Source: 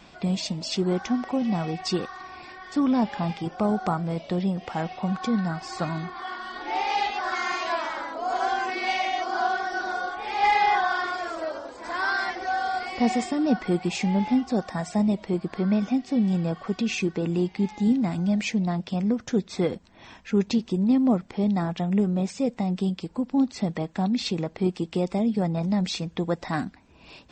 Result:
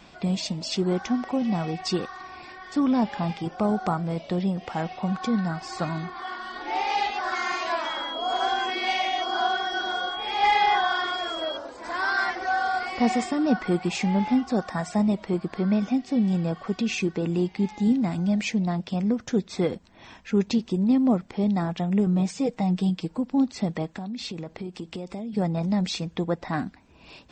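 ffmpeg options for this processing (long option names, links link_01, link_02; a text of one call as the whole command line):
ffmpeg -i in.wav -filter_complex "[0:a]asettb=1/sr,asplit=3[link_01][link_02][link_03];[link_01]atrim=end=7.854[link_04];[link_02]atrim=start=7.85:end=11.57,asetpts=PTS-STARTPTS,afade=type=in:duration=0.004:curve=qsin,afade=type=out:start_time=3.716:duration=0.004:curve=qsin,aeval=exprs='val(0)+0.0224*sin(2*PI*3300*n/s)':channel_layout=same[link_05];[link_03]atrim=start=11.566[link_06];[link_04][link_05]acrossfade=duration=0.004:curve1=hsin:curve2=qsin[link_07];[link_07][link_06]acrossfade=duration=0.004:curve1=qsin:curve2=hsin,asettb=1/sr,asplit=3[link_08][link_09][link_10];[link_08]atrim=end=12.174[link_11];[link_09]atrim=start=12.17:end=15.46,asetpts=PTS-STARTPTS,afade=type=in:duration=0.004:curve=qsin,afade=type=out:start_time=3.286:duration=0.004:curve=qsin,equalizer=frequency=1300:width=1.5:gain=4.5[link_12];[link_10]atrim=start=15.456[link_13];[link_11][link_12]acrossfade=duration=0.004:curve1=hsin:curve2=qsin[link_14];[link_14][link_13]acrossfade=duration=0.004:curve1=qsin:curve2=hsin,asettb=1/sr,asplit=3[link_15][link_16][link_17];[link_15]atrim=end=22.064[link_18];[link_16]atrim=start=22.06:end=23.18,asetpts=PTS-STARTPTS,afade=type=in:duration=0.004:curve=qsin,afade=type=out:start_time=1.116:duration=0.004:curve=qsin,aecho=1:1:6.4:0.65,atrim=end_sample=49392[link_19];[link_17]atrim=start=23.176[link_20];[link_18][link_19]acrossfade=duration=0.004:curve1=hsin:curve2=qsin[link_21];[link_21][link_20]acrossfade=duration=0.004:curve1=qsin:curve2=hsin,asettb=1/sr,asplit=3[link_22][link_23][link_24];[link_22]atrim=end=23.964[link_25];[link_23]atrim=start=23.96:end=25.33,asetpts=PTS-STARTPTS,afade=type=in:duration=0.004:curve=qsin,afade=type=out:start_time=1.366:duration=0.004:curve=qsin,acompressor=threshold=-30dB:ratio=10:attack=3.2:release=140:knee=1:detection=peak[link_26];[link_24]atrim=start=25.326[link_27];[link_25][link_26]acrossfade=duration=0.004:curve1=hsin:curve2=qsin[link_28];[link_28][link_27]acrossfade=duration=0.004:curve1=qsin:curve2=hsin,asettb=1/sr,asplit=3[link_29][link_30][link_31];[link_29]atrim=end=26.244[link_32];[link_30]atrim=start=26.24:end=26.65,asetpts=PTS-STARTPTS,afade=type=in:duration=0.004:curve=qsin,afade=type=out:start_time=0.406:duration=0.004:curve=qsin,highshelf=frequency=4900:gain=-11[link_33];[link_31]atrim=start=26.646[link_34];[link_32][link_33]acrossfade=duration=0.004:curve1=hsin:curve2=qsin[link_35];[link_35][link_34]acrossfade=duration=0.004:curve1=qsin:curve2=hsin" out.wav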